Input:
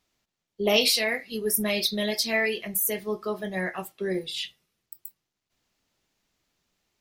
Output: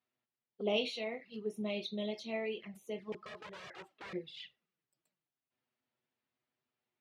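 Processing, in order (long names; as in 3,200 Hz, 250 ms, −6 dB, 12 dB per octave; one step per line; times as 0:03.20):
0:03.12–0:04.13: wrap-around overflow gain 29 dB
flanger swept by the level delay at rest 8.2 ms, full sweep at −24.5 dBFS
band-pass filter 130–2,800 Hz
level −8.5 dB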